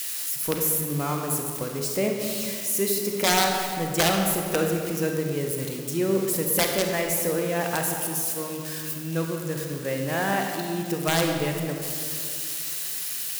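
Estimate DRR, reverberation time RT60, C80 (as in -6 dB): 2.0 dB, 2.4 s, 4.0 dB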